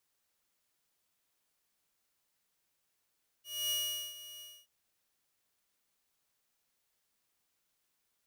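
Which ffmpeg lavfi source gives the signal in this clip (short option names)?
-f lavfi -i "aevalsrc='0.0398*(2*mod(2900*t,1)-1)':d=1.227:s=44100,afade=t=in:d=0.264,afade=t=out:st=0.264:d=0.431:silence=0.158,afade=t=out:st=0.97:d=0.257"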